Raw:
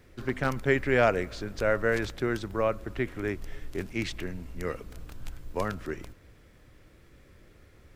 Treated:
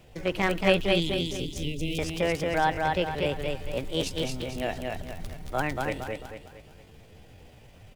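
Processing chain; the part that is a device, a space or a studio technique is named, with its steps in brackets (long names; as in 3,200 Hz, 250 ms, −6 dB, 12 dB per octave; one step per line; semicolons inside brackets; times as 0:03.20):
0:00.78–0:02.00: elliptic band-stop filter 290–2,200 Hz, stop band 40 dB
0:04.01–0:04.58: double-tracking delay 24 ms −8 dB
repeating echo 226 ms, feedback 41%, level −3 dB
chipmunk voice (pitch shifter +6 semitones)
level +2 dB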